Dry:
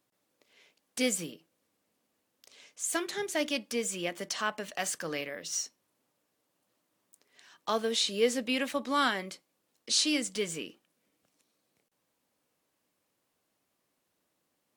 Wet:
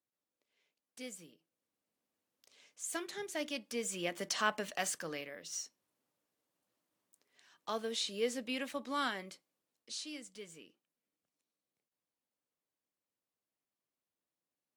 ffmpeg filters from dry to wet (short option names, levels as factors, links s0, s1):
-af "afade=t=in:st=1.27:d=1.4:silence=0.334965,afade=t=in:st=3.64:d=0.87:silence=0.398107,afade=t=out:st=4.51:d=0.7:silence=0.398107,afade=t=out:st=9.32:d=0.68:silence=0.354813"